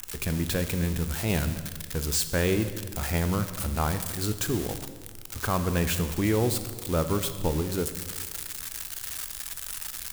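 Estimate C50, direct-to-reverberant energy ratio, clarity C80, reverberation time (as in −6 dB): 11.0 dB, 9.5 dB, 12.0 dB, 1.5 s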